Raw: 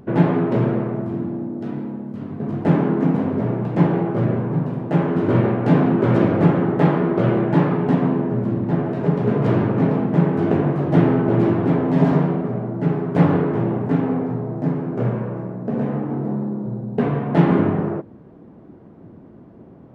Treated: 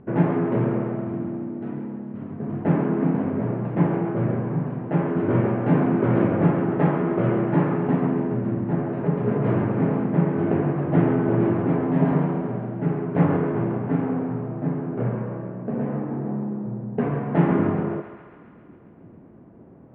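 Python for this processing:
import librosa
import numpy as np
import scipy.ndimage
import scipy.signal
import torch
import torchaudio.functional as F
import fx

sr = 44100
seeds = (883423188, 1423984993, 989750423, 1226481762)

p1 = scipy.signal.sosfilt(scipy.signal.butter(4, 2600.0, 'lowpass', fs=sr, output='sos'), x)
p2 = p1 + fx.echo_thinned(p1, sr, ms=136, feedback_pct=75, hz=570.0, wet_db=-10, dry=0)
y = p2 * librosa.db_to_amplitude(-4.0)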